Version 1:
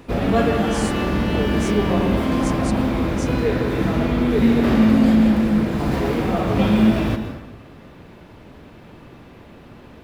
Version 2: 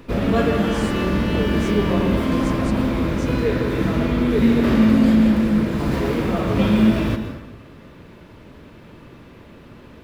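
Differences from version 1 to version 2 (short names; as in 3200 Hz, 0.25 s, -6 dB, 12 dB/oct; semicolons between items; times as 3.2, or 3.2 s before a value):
speech: add tilt -2.5 dB/oct; master: add bell 760 Hz -8 dB 0.23 oct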